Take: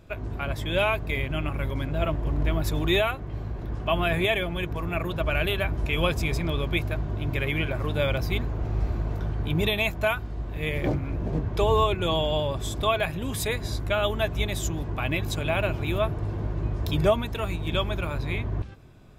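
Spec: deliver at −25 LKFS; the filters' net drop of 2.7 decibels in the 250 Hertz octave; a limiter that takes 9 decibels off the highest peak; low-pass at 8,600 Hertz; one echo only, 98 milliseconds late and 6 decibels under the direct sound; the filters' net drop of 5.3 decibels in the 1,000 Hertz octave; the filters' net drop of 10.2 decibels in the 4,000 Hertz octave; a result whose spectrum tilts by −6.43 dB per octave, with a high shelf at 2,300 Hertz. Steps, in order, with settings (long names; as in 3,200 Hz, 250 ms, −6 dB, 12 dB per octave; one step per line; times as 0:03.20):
low-pass filter 8,600 Hz
parametric band 250 Hz −4 dB
parametric band 1,000 Hz −5 dB
high-shelf EQ 2,300 Hz −6.5 dB
parametric band 4,000 Hz −7 dB
brickwall limiter −21.5 dBFS
single-tap delay 98 ms −6 dB
level +5 dB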